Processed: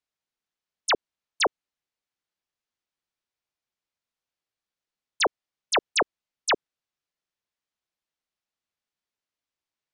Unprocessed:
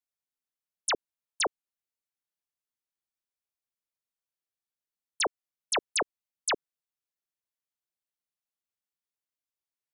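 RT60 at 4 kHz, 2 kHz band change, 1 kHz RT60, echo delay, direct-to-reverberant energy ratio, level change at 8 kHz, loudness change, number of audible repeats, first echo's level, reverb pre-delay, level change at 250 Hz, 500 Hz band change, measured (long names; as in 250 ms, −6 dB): no reverb audible, +6.0 dB, no reverb audible, no echo audible, no reverb audible, 0.0 dB, +4.5 dB, no echo audible, no echo audible, no reverb audible, +6.0 dB, +6.0 dB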